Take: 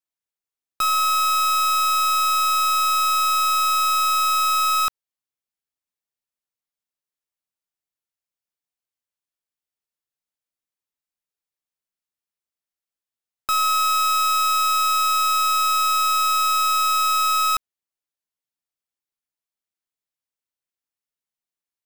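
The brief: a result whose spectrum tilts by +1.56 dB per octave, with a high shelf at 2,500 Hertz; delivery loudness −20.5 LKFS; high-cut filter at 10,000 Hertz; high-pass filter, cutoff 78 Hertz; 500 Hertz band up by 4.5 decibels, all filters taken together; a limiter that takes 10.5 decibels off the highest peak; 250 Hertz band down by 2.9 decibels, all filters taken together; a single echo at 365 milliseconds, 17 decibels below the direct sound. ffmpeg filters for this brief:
ffmpeg -i in.wav -af "highpass=78,lowpass=10000,equalizer=frequency=250:width_type=o:gain=-7.5,equalizer=frequency=500:width_type=o:gain=6.5,highshelf=frequency=2500:gain=9,alimiter=limit=-19.5dB:level=0:latency=1,aecho=1:1:365:0.141,volume=4.5dB" out.wav

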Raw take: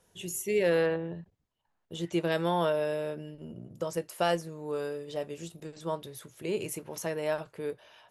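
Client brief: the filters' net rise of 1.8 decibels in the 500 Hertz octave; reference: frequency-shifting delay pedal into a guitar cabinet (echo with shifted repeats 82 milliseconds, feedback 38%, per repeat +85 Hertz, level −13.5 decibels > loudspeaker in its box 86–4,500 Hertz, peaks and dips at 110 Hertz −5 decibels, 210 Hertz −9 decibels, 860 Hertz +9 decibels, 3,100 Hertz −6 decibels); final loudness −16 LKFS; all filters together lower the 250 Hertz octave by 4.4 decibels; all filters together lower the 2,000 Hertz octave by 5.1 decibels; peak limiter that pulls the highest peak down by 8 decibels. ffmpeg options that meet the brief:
ffmpeg -i in.wav -filter_complex "[0:a]equalizer=frequency=250:width_type=o:gain=-7.5,equalizer=frequency=500:width_type=o:gain=3.5,equalizer=frequency=2000:width_type=o:gain=-6.5,alimiter=limit=-23.5dB:level=0:latency=1,asplit=5[link_01][link_02][link_03][link_04][link_05];[link_02]adelay=82,afreqshift=85,volume=-13.5dB[link_06];[link_03]adelay=164,afreqshift=170,volume=-21.9dB[link_07];[link_04]adelay=246,afreqshift=255,volume=-30.3dB[link_08];[link_05]adelay=328,afreqshift=340,volume=-38.7dB[link_09];[link_01][link_06][link_07][link_08][link_09]amix=inputs=5:normalize=0,highpass=86,equalizer=frequency=110:width_type=q:width=4:gain=-5,equalizer=frequency=210:width_type=q:width=4:gain=-9,equalizer=frequency=860:width_type=q:width=4:gain=9,equalizer=frequency=3100:width_type=q:width=4:gain=-6,lowpass=frequency=4500:width=0.5412,lowpass=frequency=4500:width=1.3066,volume=17.5dB" out.wav

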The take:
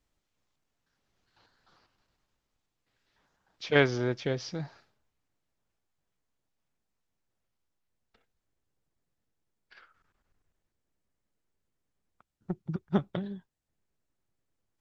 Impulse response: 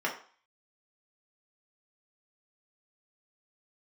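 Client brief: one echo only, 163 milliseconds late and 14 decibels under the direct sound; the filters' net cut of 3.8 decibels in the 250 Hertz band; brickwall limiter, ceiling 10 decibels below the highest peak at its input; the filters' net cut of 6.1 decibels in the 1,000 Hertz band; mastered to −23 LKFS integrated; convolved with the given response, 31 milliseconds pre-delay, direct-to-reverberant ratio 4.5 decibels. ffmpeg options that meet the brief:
-filter_complex "[0:a]equalizer=frequency=250:width_type=o:gain=-5,equalizer=frequency=1000:width_type=o:gain=-9,alimiter=limit=-21dB:level=0:latency=1,aecho=1:1:163:0.2,asplit=2[link_01][link_02];[1:a]atrim=start_sample=2205,adelay=31[link_03];[link_02][link_03]afir=irnorm=-1:irlink=0,volume=-13dB[link_04];[link_01][link_04]amix=inputs=2:normalize=0,volume=13dB"

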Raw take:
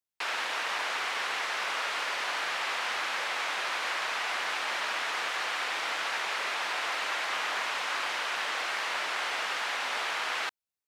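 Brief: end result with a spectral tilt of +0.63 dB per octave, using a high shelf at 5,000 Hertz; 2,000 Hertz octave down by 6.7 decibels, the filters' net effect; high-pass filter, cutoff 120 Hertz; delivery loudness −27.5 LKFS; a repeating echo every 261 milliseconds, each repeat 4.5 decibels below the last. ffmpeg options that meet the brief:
ffmpeg -i in.wav -af "highpass=120,equalizer=frequency=2000:width_type=o:gain=-7.5,highshelf=frequency=5000:gain=-7,aecho=1:1:261|522|783|1044|1305|1566|1827|2088|2349:0.596|0.357|0.214|0.129|0.0772|0.0463|0.0278|0.0167|0.01,volume=6dB" out.wav

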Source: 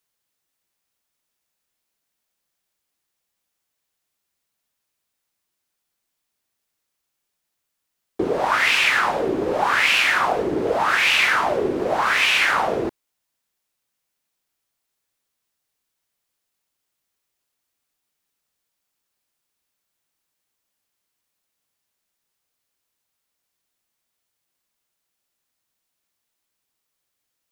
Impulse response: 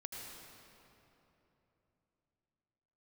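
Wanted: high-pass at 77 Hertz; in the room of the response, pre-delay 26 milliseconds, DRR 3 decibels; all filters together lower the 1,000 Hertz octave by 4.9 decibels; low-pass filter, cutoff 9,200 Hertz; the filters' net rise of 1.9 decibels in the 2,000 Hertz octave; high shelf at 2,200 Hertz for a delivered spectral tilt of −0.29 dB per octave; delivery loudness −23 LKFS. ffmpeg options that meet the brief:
-filter_complex "[0:a]highpass=77,lowpass=9200,equalizer=frequency=1000:width_type=o:gain=-7.5,equalizer=frequency=2000:width_type=o:gain=8.5,highshelf=frequency=2200:gain=-7.5,asplit=2[link_01][link_02];[1:a]atrim=start_sample=2205,adelay=26[link_03];[link_02][link_03]afir=irnorm=-1:irlink=0,volume=-1dB[link_04];[link_01][link_04]amix=inputs=2:normalize=0,volume=-6.5dB"

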